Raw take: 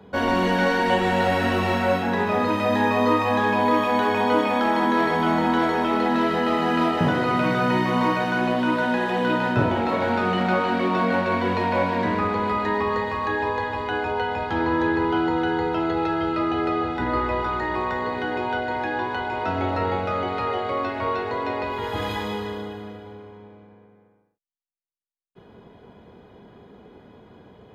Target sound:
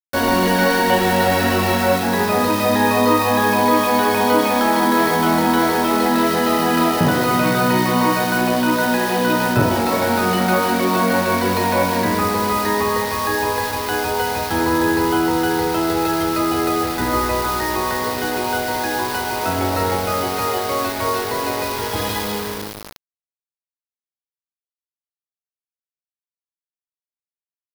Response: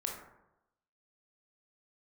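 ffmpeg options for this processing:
-af "aeval=exprs='val(0)*gte(abs(val(0)),0.0316)':channel_layout=same,aexciter=amount=1.3:drive=7.8:freq=4100,volume=4.5dB"

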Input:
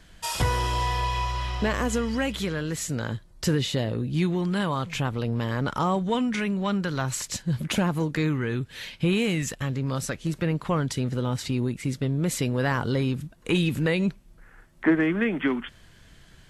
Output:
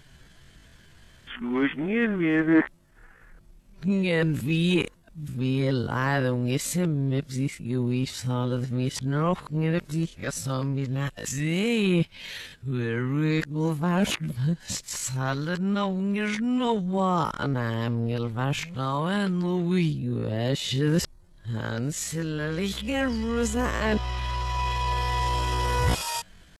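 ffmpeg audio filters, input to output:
ffmpeg -i in.wav -af "areverse,atempo=0.62" out.wav

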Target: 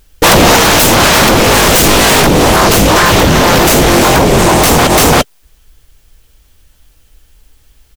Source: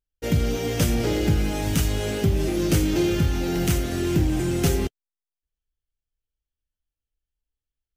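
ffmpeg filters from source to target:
ffmpeg -i in.wav -filter_complex "[0:a]acompressor=threshold=-20dB:ratio=6,asplit=3[link_01][link_02][link_03];[link_01]afade=type=out:start_time=2.21:duration=0.02[link_04];[link_02]flanger=delay=17:depth=3.9:speed=2.3,afade=type=in:start_time=2.21:duration=0.02,afade=type=out:start_time=4.77:duration=0.02[link_05];[link_03]afade=type=in:start_time=4.77:duration=0.02[link_06];[link_04][link_05][link_06]amix=inputs=3:normalize=0,aeval=exprs='0.188*sin(PI/2*6.31*val(0)/0.188)':channel_layout=same,aecho=1:1:342:0.335,alimiter=level_in=21.5dB:limit=-1dB:release=50:level=0:latency=1,volume=-1dB" out.wav

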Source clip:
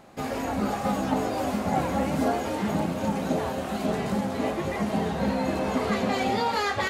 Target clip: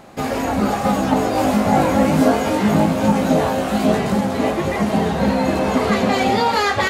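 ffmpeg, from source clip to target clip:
ffmpeg -i in.wav -filter_complex "[0:a]asettb=1/sr,asplit=3[link_01][link_02][link_03];[link_01]atrim=end=1.334[link_04];[link_02]atrim=start=1.33:end=3.99,asetpts=PTS-STARTPTS,afade=type=in:duration=0.004:curve=qsin,afade=type=out:start_time=2.656:duration=0.004:curve=qsin,asplit=2[link_05][link_06];[link_06]adelay=19,volume=-4dB[link_07];[link_05][link_07]amix=inputs=2:normalize=0,atrim=end_sample=117306[link_08];[link_03]atrim=start=3.986[link_09];[link_04][link_08]acrossfade=duration=0.004:curve1=hsin:curve2=qsin[link_10];[link_10][link_09]acrossfade=duration=0.004:curve1=qsin:curve2=hsin,volume=8.5dB" out.wav

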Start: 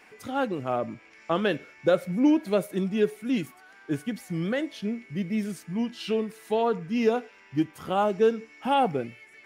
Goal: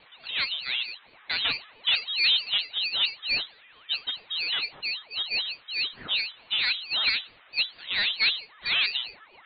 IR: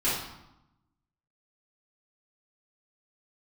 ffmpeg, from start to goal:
-af "aeval=exprs='0.282*(cos(1*acos(clip(val(0)/0.282,-1,1)))-cos(1*PI/2))+0.0562*(cos(4*acos(clip(val(0)/0.282,-1,1)))-cos(4*PI/2))+0.0708*(cos(5*acos(clip(val(0)/0.282,-1,1)))-cos(5*PI/2))+0.01*(cos(6*acos(clip(val(0)/0.282,-1,1)))-cos(6*PI/2))+0.0282*(cos(7*acos(clip(val(0)/0.282,-1,1)))-cos(7*PI/2))':channel_layout=same,lowpass=frequency=3100:width_type=q:width=0.5098,lowpass=frequency=3100:width_type=q:width=0.6013,lowpass=frequency=3100:width_type=q:width=0.9,lowpass=frequency=3100:width_type=q:width=2.563,afreqshift=-3700,aeval=exprs='val(0)*sin(2*PI*630*n/s+630*0.7/4.5*sin(2*PI*4.5*n/s))':channel_layout=same,volume=-2dB"

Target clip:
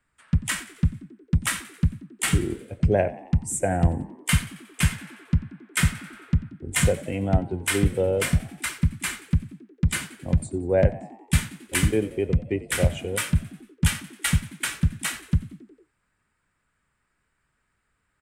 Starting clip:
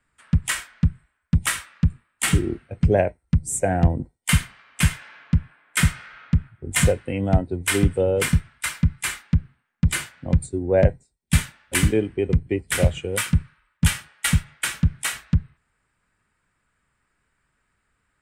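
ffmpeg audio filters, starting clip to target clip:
ffmpeg -i in.wav -filter_complex "[0:a]asplit=6[link_01][link_02][link_03][link_04][link_05][link_06];[link_02]adelay=90,afreqshift=56,volume=-18dB[link_07];[link_03]adelay=180,afreqshift=112,volume=-23dB[link_08];[link_04]adelay=270,afreqshift=168,volume=-28.1dB[link_09];[link_05]adelay=360,afreqshift=224,volume=-33.1dB[link_10];[link_06]adelay=450,afreqshift=280,volume=-38.1dB[link_11];[link_01][link_07][link_08][link_09][link_10][link_11]amix=inputs=6:normalize=0,volume=-2.5dB" out.wav

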